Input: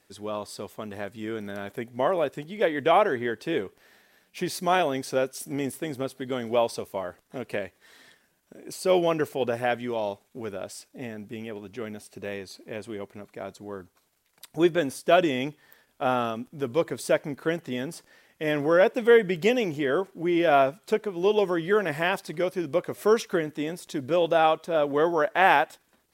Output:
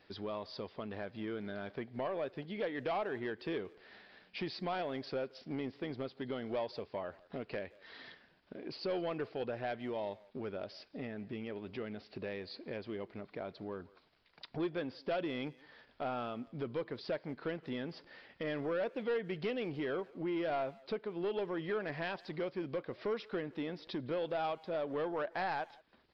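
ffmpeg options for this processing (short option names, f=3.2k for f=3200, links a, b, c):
-filter_complex "[0:a]acompressor=threshold=-45dB:ratio=2,aresample=11025,asoftclip=type=tanh:threshold=-30.5dB,aresample=44100,asplit=2[a][b];[b]adelay=170,highpass=300,lowpass=3.4k,asoftclip=type=hard:threshold=-39dB,volume=-20dB[c];[a][c]amix=inputs=2:normalize=0,volume=2dB"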